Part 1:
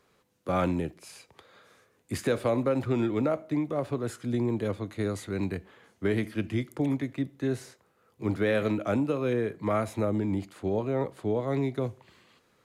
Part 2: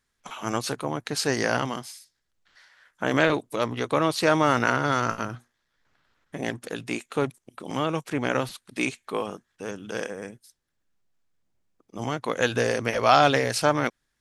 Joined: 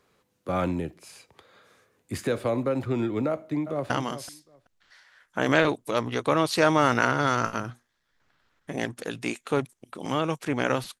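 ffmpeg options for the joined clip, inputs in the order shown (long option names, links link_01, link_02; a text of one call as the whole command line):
ffmpeg -i cue0.wav -i cue1.wav -filter_complex "[0:a]apad=whole_dur=11,atrim=end=11,atrim=end=3.902[link_01];[1:a]atrim=start=1.548:end=8.65[link_02];[link_01][link_02]acrossfade=duration=0.004:curve1=hsin:curve2=hsin,asplit=2[link_03][link_04];[link_04]afade=type=in:start_time=3.28:duration=0.01,afade=type=out:start_time=3.9:duration=0.01,aecho=0:1:380|760:0.266073|0.0399109[link_05];[link_03][link_05]amix=inputs=2:normalize=0" out.wav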